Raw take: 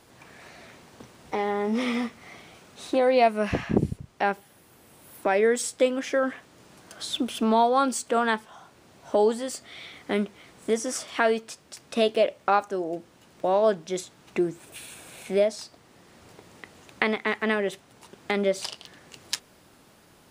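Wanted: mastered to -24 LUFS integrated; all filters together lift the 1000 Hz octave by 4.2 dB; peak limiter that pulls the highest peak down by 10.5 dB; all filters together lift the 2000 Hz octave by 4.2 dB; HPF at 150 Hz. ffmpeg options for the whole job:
-af "highpass=150,equalizer=f=1k:t=o:g=5,equalizer=f=2k:t=o:g=3.5,volume=1.5dB,alimiter=limit=-9.5dB:level=0:latency=1"

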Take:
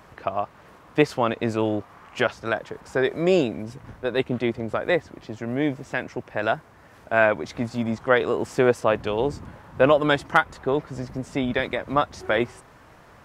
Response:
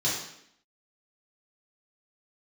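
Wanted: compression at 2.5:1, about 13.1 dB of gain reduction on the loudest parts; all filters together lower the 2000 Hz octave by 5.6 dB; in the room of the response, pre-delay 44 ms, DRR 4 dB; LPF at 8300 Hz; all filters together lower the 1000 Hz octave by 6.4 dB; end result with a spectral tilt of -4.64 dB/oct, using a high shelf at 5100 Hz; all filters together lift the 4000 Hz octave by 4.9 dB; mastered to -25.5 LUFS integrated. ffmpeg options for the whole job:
-filter_complex "[0:a]lowpass=8.3k,equalizer=f=1k:t=o:g=-8,equalizer=f=2k:t=o:g=-6.5,equalizer=f=4k:t=o:g=7.5,highshelf=f=5.1k:g=4.5,acompressor=threshold=-35dB:ratio=2.5,asplit=2[a][b];[1:a]atrim=start_sample=2205,adelay=44[c];[b][c]afir=irnorm=-1:irlink=0,volume=-14dB[d];[a][d]amix=inputs=2:normalize=0,volume=9dB"

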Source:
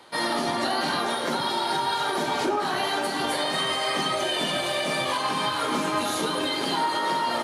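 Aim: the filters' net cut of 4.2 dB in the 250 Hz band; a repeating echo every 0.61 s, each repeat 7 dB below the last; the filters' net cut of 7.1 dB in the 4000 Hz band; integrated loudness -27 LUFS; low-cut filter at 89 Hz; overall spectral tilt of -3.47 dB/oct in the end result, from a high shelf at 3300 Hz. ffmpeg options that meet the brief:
-af "highpass=89,equalizer=f=250:t=o:g=-5.5,highshelf=f=3.3k:g=-8.5,equalizer=f=4k:t=o:g=-3.5,aecho=1:1:610|1220|1830|2440|3050:0.447|0.201|0.0905|0.0407|0.0183"

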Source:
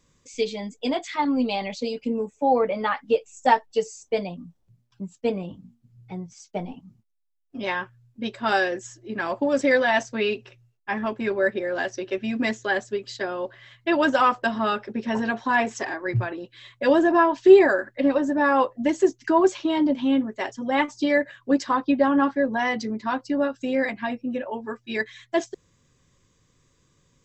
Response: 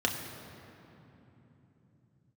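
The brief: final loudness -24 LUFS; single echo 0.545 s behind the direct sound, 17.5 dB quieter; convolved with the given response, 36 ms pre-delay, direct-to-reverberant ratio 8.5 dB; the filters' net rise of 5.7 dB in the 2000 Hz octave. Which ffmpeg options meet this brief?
-filter_complex "[0:a]equalizer=f=2k:t=o:g=7,aecho=1:1:545:0.133,asplit=2[a][b];[1:a]atrim=start_sample=2205,adelay=36[c];[b][c]afir=irnorm=-1:irlink=0,volume=-17.5dB[d];[a][d]amix=inputs=2:normalize=0,volume=-2.5dB"

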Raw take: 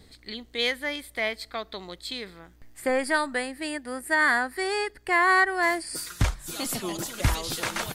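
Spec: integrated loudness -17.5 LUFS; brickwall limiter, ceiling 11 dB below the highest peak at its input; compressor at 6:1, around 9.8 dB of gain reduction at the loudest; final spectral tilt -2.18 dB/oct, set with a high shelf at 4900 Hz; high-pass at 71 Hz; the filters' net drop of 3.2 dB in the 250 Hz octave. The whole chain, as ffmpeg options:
-af "highpass=71,equalizer=f=250:t=o:g=-4.5,highshelf=f=4.9k:g=9,acompressor=threshold=-27dB:ratio=6,volume=17.5dB,alimiter=limit=-8.5dB:level=0:latency=1"

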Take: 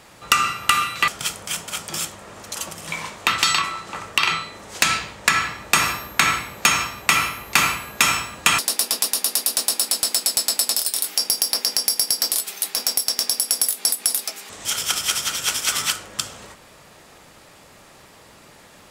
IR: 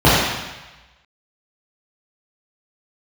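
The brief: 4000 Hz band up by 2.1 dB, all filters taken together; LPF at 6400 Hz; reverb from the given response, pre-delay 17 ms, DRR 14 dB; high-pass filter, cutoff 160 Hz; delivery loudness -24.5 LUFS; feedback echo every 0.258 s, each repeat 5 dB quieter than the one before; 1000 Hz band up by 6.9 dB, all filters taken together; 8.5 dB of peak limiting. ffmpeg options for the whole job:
-filter_complex "[0:a]highpass=160,lowpass=6.4k,equalizer=f=1k:t=o:g=9,equalizer=f=4k:t=o:g=3.5,alimiter=limit=-7.5dB:level=0:latency=1,aecho=1:1:258|516|774|1032|1290|1548|1806:0.562|0.315|0.176|0.0988|0.0553|0.031|0.0173,asplit=2[a][b];[1:a]atrim=start_sample=2205,adelay=17[c];[b][c]afir=irnorm=-1:irlink=0,volume=-43dB[d];[a][d]amix=inputs=2:normalize=0,volume=-5dB"

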